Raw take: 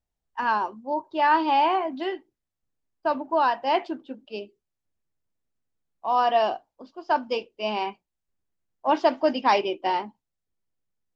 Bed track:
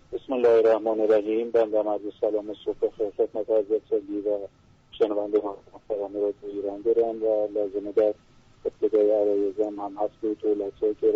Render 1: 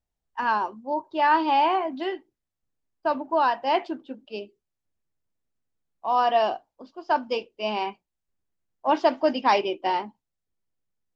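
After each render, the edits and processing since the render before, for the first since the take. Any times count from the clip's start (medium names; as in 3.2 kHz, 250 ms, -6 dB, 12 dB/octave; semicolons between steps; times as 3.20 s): no audible change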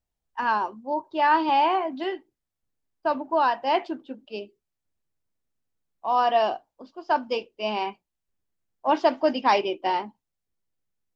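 1.49–2.04 s: high-pass 140 Hz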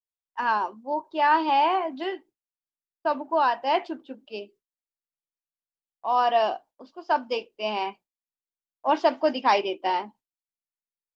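gate with hold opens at -54 dBFS; bass shelf 140 Hz -11.5 dB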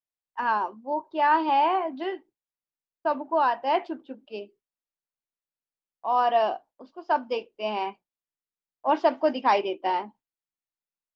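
treble shelf 3.6 kHz -10 dB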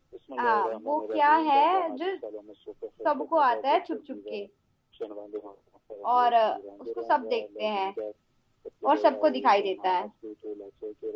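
add bed track -14 dB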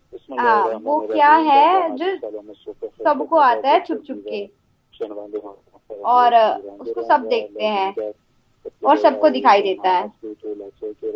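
trim +9 dB; peak limiter -2 dBFS, peak gain reduction 2 dB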